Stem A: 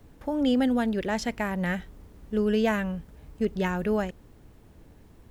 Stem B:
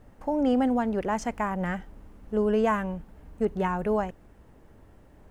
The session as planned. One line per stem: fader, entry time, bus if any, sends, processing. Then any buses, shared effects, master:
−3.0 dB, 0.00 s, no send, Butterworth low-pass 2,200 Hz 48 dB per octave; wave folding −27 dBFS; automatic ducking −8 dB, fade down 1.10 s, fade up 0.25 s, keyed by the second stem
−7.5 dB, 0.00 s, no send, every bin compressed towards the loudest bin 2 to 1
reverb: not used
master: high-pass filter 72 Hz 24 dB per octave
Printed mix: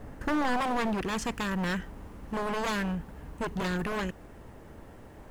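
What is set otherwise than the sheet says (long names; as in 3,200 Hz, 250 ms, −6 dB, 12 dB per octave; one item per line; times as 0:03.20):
stem A −3.0 dB → +7.5 dB
master: missing high-pass filter 72 Hz 24 dB per octave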